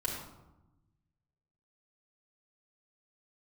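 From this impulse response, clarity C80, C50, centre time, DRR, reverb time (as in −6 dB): 5.0 dB, 2.5 dB, 49 ms, −5.0 dB, 0.95 s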